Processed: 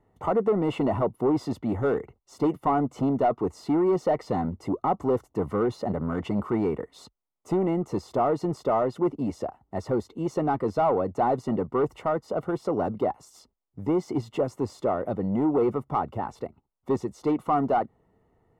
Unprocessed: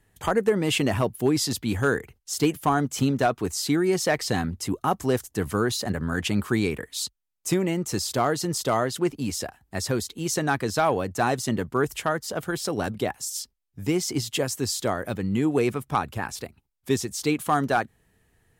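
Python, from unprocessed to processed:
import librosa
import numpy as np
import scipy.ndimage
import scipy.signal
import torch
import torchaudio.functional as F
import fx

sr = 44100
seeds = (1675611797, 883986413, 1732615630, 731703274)

y = 10.0 ** (-21.5 / 20.0) * np.tanh(x / 10.0 ** (-21.5 / 20.0))
y = scipy.signal.savgol_filter(y, 65, 4, mode='constant')
y = fx.low_shelf(y, sr, hz=160.0, db=-11.5)
y = y * librosa.db_to_amplitude(6.0)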